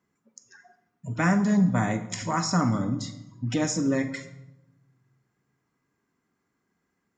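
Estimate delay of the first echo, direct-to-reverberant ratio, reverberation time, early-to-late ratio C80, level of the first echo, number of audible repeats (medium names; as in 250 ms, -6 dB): no echo, 9.0 dB, 0.95 s, 14.0 dB, no echo, no echo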